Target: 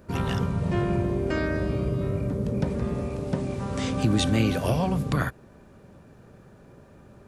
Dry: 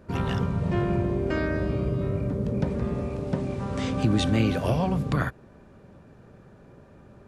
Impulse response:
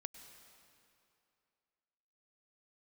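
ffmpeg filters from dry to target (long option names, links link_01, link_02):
-af "highshelf=frequency=6600:gain=10"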